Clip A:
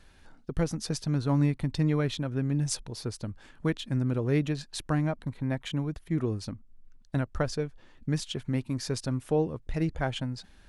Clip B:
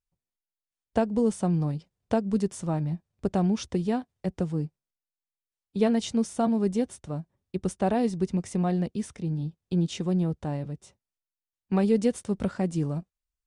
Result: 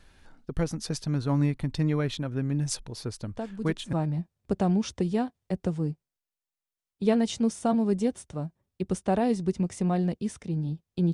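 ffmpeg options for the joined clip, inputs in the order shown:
-filter_complex "[1:a]asplit=2[a][b];[0:a]apad=whole_dur=11.13,atrim=end=11.13,atrim=end=3.932[c];[b]atrim=start=2.668:end=9.87[d];[a]atrim=start=1.98:end=2.67,asetpts=PTS-STARTPTS,volume=-10dB,afade=t=in:d=0.004:c=hsin,afade=t=out:st=0.686:d=0.004:c=hsin,adelay=3240[e];[c][d]acrossfade=d=0.004:c1=hsin:c2=hsin[f];[f][e]amix=inputs=2:normalize=0"

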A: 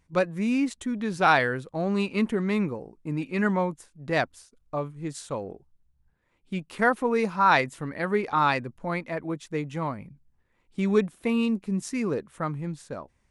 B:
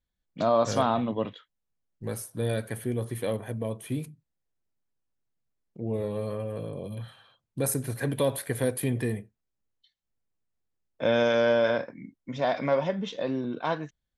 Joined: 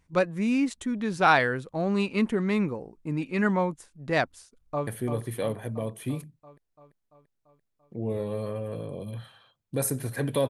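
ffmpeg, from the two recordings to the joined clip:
-filter_complex "[0:a]apad=whole_dur=10.49,atrim=end=10.49,atrim=end=4.872[a];[1:a]atrim=start=2.708:end=8.33[b];[a][b]acrossfade=d=0.004:c1=hsin:c2=hsin,asplit=2[c][d];[d]afade=t=in:st=4.53:d=0.01,afade=t=out:st=4.87:d=0.01,aecho=0:1:340|680|1020|1360|1700|2040|2380|2720|3060:0.446684|0.290344|0.188724|0.12267|0.0797358|0.0518283|0.0336884|0.0218974|0.0142333[e];[c][e]amix=inputs=2:normalize=0"

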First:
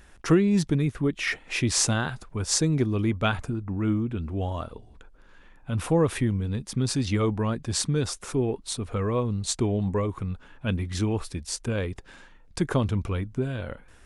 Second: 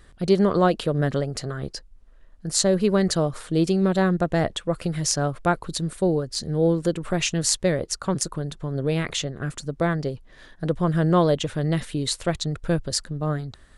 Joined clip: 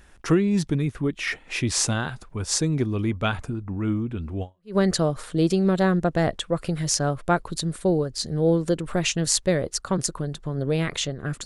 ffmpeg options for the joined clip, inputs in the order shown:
-filter_complex "[0:a]apad=whole_dur=11.45,atrim=end=11.45,atrim=end=4.76,asetpts=PTS-STARTPTS[a];[1:a]atrim=start=2.59:end=9.62,asetpts=PTS-STARTPTS[b];[a][b]acrossfade=d=0.34:c1=exp:c2=exp"

